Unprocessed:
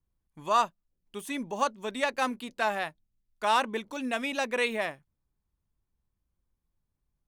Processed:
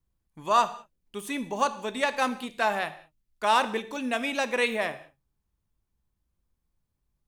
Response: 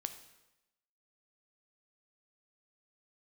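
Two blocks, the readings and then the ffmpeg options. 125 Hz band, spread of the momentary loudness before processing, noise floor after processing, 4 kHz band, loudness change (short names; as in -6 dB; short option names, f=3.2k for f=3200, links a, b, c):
+2.5 dB, 10 LU, -80 dBFS, +2.5 dB, +2.5 dB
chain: -filter_complex "[0:a]asplit=2[a][b];[1:a]atrim=start_sample=2205,afade=t=out:st=0.26:d=0.01,atrim=end_sample=11907[c];[b][c]afir=irnorm=-1:irlink=0,volume=9dB[d];[a][d]amix=inputs=2:normalize=0,volume=-8dB"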